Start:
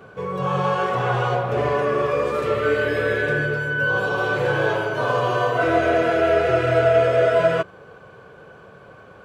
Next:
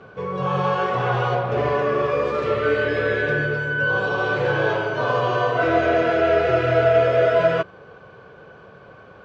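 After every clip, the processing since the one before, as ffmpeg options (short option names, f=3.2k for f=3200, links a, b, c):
-af "lowpass=f=5.9k:w=0.5412,lowpass=f=5.9k:w=1.3066"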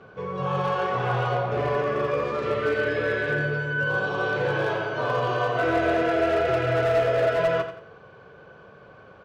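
-af "volume=13.5dB,asoftclip=hard,volume=-13.5dB,aecho=1:1:88|176|264|352:0.316|0.108|0.0366|0.0124,volume=-4dB"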